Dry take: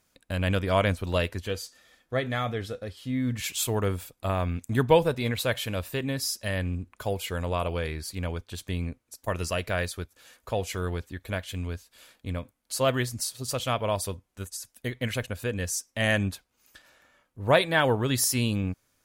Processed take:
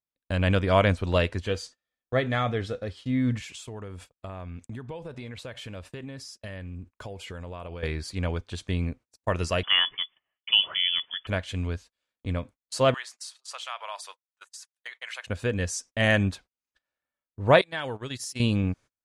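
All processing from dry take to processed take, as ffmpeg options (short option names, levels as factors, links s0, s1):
-filter_complex "[0:a]asettb=1/sr,asplit=3[s0][s1][s2];[s0]atrim=end=3.384[s3];[s1]atrim=start=3.38:end=7.83,asetpts=PTS-STARTPTS,afade=t=in:d=0.004:c=qsin,afade=t=out:st=4.446:d=0.004:c=qsin,acompressor=threshold=0.0141:ratio=12:attack=3.2:release=140:knee=1:detection=peak,equalizer=f=3900:w=6.2:g=-3[s4];[s2]atrim=start=7.826[s5];[s3][s4]acrossfade=d=0.004:c1=hsin:c2=qsin[s6];[s6][s5]acrossfade=d=0.004:c1=qsin:c2=hsin,asettb=1/sr,asplit=3[s7][s8][s9];[s7]atrim=end=9.634[s10];[s8]atrim=start=9.63:end=11.27,asetpts=PTS-STARTPTS,afade=t=in:d=0.004:c=qsin,afade=t=out:st=1.636:d=0.004:c=qsin,deesser=0.8,equalizer=f=580:w=0.89:g=7,lowpass=f=3000:t=q:w=0.5098,lowpass=f=3000:t=q:w=0.6013,lowpass=f=3000:t=q:w=0.9,lowpass=f=3000:t=q:w=2.563,afreqshift=-3500[s11];[s9]atrim=start=11.266[s12];[s10][s11]acrossfade=d=0.004:c1=hsin:c2=qsin[s13];[s13][s12]acrossfade=d=0.004:c1=qsin:c2=hsin,asettb=1/sr,asplit=3[s14][s15][s16];[s14]atrim=end=12.944[s17];[s15]atrim=start=12.94:end=15.27,asetpts=PTS-STARTPTS,afade=t=in:d=0.004:c=qsin,afade=t=out:st=2.326:d=0.004:c=qsin,highpass=f=870:w=0.5412,highpass=f=870:w=1.3066,acompressor=threshold=0.0126:ratio=2:attack=3.2:release=140:knee=1:detection=peak[s18];[s16]atrim=start=15.266[s19];[s17][s18]acrossfade=d=0.004:c1=hsin:c2=qsin[s20];[s20][s19]acrossfade=d=0.004:c1=qsin:c2=hsin,asettb=1/sr,asplit=3[s21][s22][s23];[s21]atrim=end=17.614[s24];[s22]atrim=start=17.61:end=18.4,asetpts=PTS-STARTPTS,afade=t=in:d=0.004:c=qsin,afade=t=out:st=0.786:d=0.004:c=qsin,agate=range=0.0501:threshold=0.0447:ratio=16:release=100:detection=peak,highshelf=f=2300:g=11,acompressor=threshold=0.00708:ratio=2:attack=3.2:release=140:knee=1:detection=peak[s25];[s23]atrim=start=18.396[s26];[s24][s25]acrossfade=d=0.004:c1=hsin:c2=qsin[s27];[s27][s26]acrossfade=d=0.004:c1=qsin:c2=hsin,lowpass=f=9500:w=0.5412,lowpass=f=9500:w=1.3066,highshelf=f=6400:g=-8.5,agate=range=0.0251:threshold=0.00447:ratio=16:detection=peak,volume=1.41"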